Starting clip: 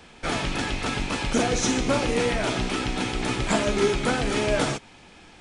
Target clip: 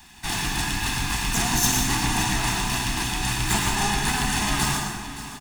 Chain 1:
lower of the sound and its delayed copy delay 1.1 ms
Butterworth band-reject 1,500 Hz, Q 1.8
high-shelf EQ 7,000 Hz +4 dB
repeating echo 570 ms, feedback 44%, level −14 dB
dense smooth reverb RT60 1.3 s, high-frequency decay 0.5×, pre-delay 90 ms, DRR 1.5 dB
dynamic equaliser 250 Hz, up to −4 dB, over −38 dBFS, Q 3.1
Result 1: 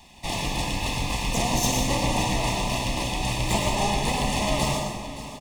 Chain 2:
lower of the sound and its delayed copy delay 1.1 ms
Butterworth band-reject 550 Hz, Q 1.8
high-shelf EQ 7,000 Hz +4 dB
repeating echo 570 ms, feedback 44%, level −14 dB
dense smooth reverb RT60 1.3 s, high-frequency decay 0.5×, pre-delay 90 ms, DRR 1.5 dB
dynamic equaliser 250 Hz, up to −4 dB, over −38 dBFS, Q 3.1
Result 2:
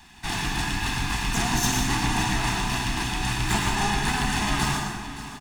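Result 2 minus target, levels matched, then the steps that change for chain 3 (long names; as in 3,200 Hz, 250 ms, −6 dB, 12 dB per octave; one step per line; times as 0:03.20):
8,000 Hz band −3.5 dB
change: high-shelf EQ 7,000 Hz +14 dB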